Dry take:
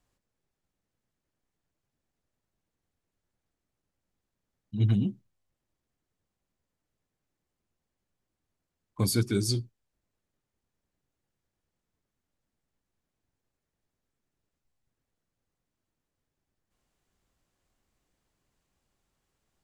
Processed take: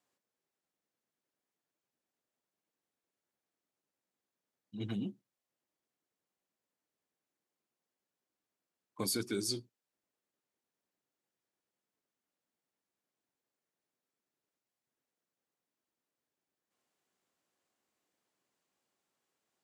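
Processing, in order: HPF 270 Hz 12 dB/oct; negative-ratio compressor -29 dBFS; gain -4 dB

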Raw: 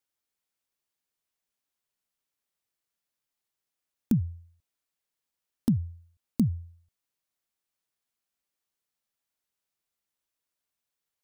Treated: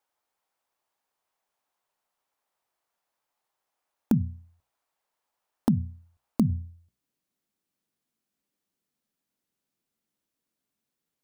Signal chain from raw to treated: bell 840 Hz +15 dB 1.8 oct, from 6.5 s 220 Hz; notches 60/120/180/240 Hz

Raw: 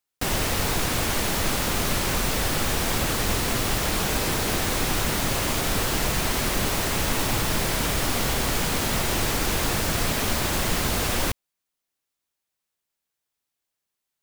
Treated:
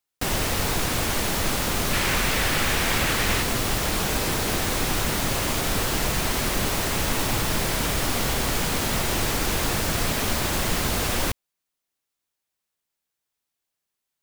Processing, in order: 1.93–3.43 bell 2100 Hz +6.5 dB 1.5 oct

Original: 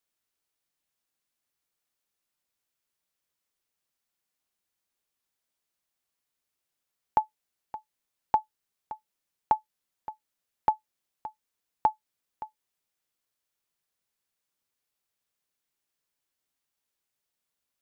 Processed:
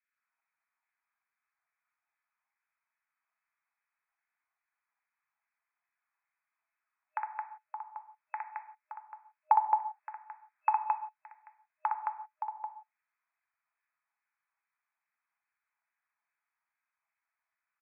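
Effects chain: LFO high-pass saw down 2.4 Hz 790–1900 Hz; 9.56–10.69 overdrive pedal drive 13 dB, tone 1900 Hz, clips at -8.5 dBFS; on a send: loudspeakers at several distances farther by 21 m -3 dB, 75 m -3 dB; on the sum: non-linear reverb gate 0.2 s falling, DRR 7 dB; FFT band-pass 620–2600 Hz; in parallel at -1.5 dB: compressor, threshold -32 dBFS, peak gain reduction 18.5 dB; on the sum: gain -8 dB

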